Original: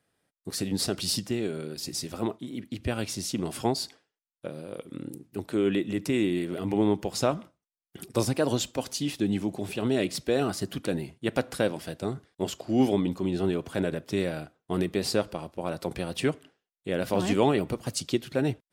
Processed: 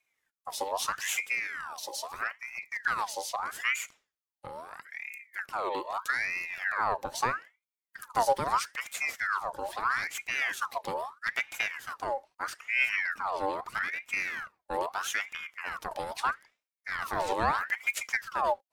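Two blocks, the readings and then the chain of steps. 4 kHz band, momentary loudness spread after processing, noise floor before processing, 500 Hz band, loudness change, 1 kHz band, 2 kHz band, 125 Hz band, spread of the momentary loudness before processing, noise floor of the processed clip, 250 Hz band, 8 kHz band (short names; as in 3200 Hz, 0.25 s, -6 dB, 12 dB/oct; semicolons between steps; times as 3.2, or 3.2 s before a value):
-5.5 dB, 11 LU, under -85 dBFS, -8.5 dB, -2.5 dB, +6.5 dB, +9.5 dB, -18.5 dB, 12 LU, under -85 dBFS, -21.0 dB, -3.0 dB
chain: graphic EQ 125/250/500/2000/8000 Hz +9/-8/-10/-10/-5 dB; ring modulator with a swept carrier 1500 Hz, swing 55%, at 0.78 Hz; gain +2 dB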